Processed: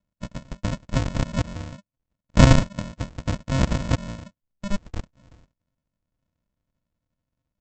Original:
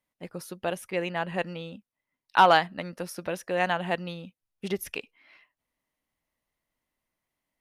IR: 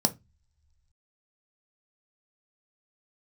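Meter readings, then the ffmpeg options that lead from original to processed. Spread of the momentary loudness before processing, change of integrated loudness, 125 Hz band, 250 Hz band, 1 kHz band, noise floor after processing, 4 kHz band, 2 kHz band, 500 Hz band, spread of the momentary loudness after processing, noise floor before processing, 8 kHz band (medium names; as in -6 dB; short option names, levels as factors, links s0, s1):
20 LU, +3.5 dB, +18.0 dB, +10.5 dB, -7.5 dB, under -85 dBFS, +0.5 dB, -3.5 dB, -2.0 dB, 22 LU, under -85 dBFS, +7.5 dB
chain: -filter_complex "[0:a]acrossover=split=3900[s0][s1];[s1]acompressor=threshold=0.00447:ratio=4:attack=1:release=60[s2];[s0][s2]amix=inputs=2:normalize=0,equalizer=f=150:t=o:w=0.69:g=-8.5,aresample=16000,acrusher=samples=40:mix=1:aa=0.000001,aresample=44100,volume=2"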